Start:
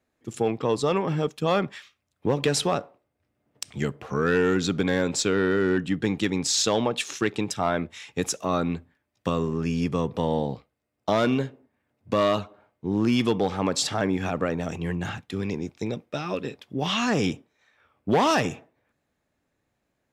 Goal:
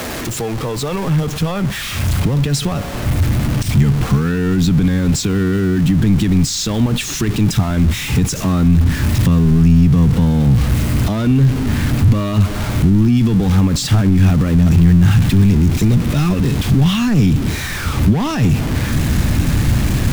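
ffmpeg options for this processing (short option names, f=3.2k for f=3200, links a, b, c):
-filter_complex "[0:a]aeval=exprs='val(0)+0.5*0.0596*sgn(val(0))':c=same,asplit=2[a][b];[b]acompressor=threshold=-31dB:ratio=6,volume=1.5dB[c];[a][c]amix=inputs=2:normalize=0,alimiter=limit=-12.5dB:level=0:latency=1,asubboost=boost=9.5:cutoff=170,acrossover=split=160[d][e];[e]acompressor=threshold=-13dB:ratio=6[f];[d][f]amix=inputs=2:normalize=0"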